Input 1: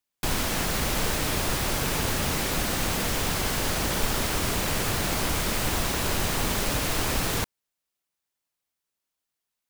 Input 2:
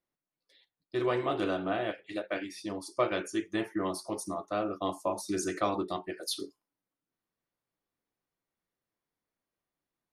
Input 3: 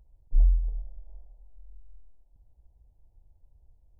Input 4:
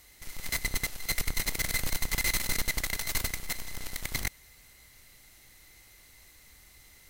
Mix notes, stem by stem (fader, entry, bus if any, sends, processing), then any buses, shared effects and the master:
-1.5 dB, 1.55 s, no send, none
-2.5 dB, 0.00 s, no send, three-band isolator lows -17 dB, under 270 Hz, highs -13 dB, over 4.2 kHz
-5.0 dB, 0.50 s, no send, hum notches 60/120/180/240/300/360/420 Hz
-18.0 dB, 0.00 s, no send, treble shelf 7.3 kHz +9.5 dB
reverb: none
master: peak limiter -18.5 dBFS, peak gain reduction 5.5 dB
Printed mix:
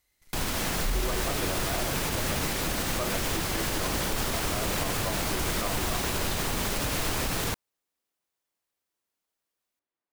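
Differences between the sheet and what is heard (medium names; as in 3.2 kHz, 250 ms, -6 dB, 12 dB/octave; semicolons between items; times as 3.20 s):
stem 1: entry 1.55 s -> 0.10 s; stem 4: missing treble shelf 7.3 kHz +9.5 dB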